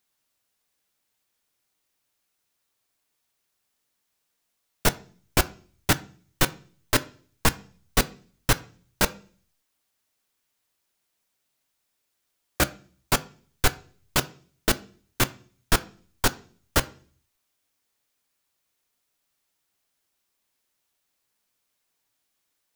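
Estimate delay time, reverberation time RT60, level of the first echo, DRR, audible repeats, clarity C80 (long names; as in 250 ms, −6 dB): no echo audible, 0.45 s, no echo audible, 11.5 dB, no echo audible, 24.5 dB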